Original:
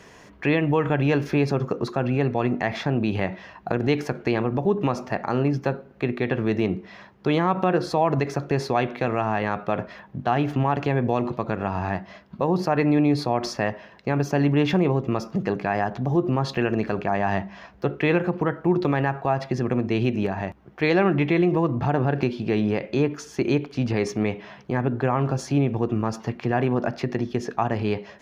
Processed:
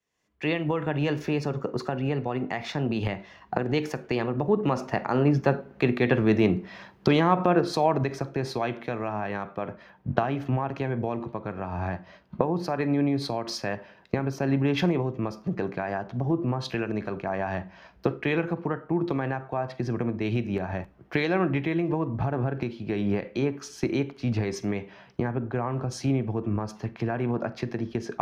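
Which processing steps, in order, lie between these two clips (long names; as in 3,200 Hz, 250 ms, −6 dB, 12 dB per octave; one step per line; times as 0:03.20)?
source passing by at 0:06.03, 14 m/s, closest 20 metres
camcorder AGC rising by 25 dB per second
four-comb reverb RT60 0.3 s, combs from 33 ms, DRR 17.5 dB
multiband upward and downward expander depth 70%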